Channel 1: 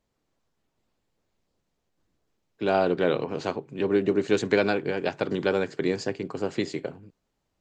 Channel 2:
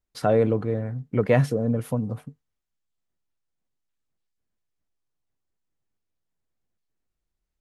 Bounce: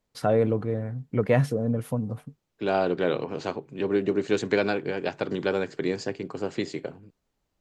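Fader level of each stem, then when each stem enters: −1.5, −2.0 decibels; 0.00, 0.00 seconds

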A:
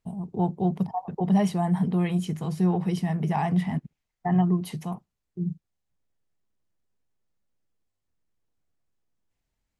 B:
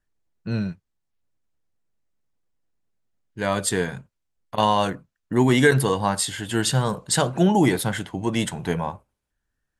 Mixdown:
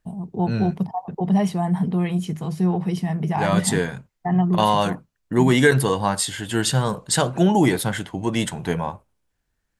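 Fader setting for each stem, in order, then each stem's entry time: +2.5, +1.0 decibels; 0.00, 0.00 seconds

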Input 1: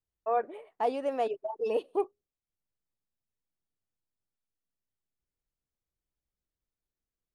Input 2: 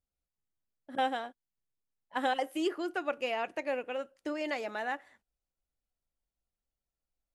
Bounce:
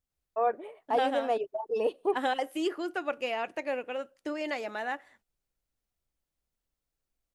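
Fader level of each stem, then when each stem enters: +1.0, +1.0 decibels; 0.10, 0.00 seconds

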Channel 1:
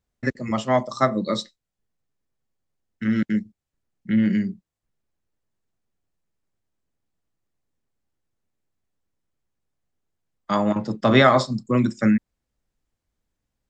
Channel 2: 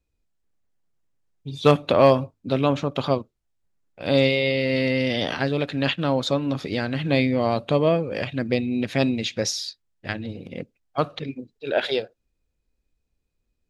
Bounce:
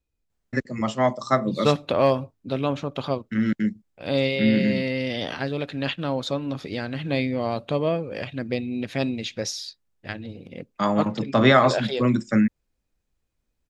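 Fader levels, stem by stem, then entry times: −1.0, −4.0 decibels; 0.30, 0.00 seconds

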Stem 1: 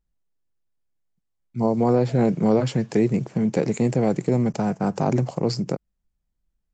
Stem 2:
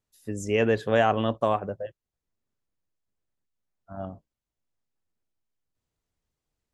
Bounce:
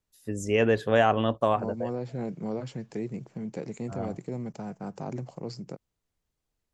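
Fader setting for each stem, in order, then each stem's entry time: −14.0, 0.0 decibels; 0.00, 0.00 seconds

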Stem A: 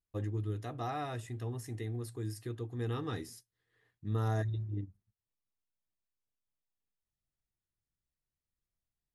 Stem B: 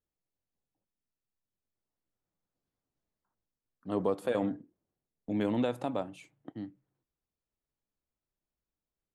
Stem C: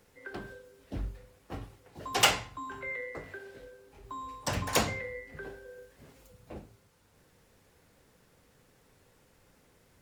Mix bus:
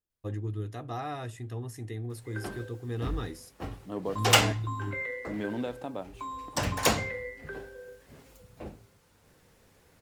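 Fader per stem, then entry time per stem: +1.5, −4.0, +2.5 decibels; 0.10, 0.00, 2.10 seconds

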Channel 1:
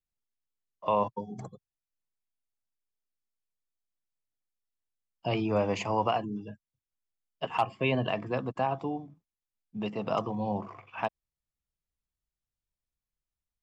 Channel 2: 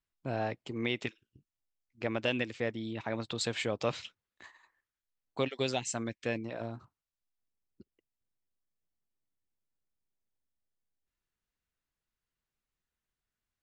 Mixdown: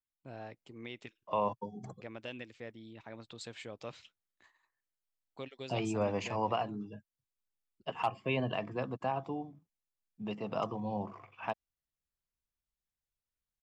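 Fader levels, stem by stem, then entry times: −5.0, −12.5 decibels; 0.45, 0.00 seconds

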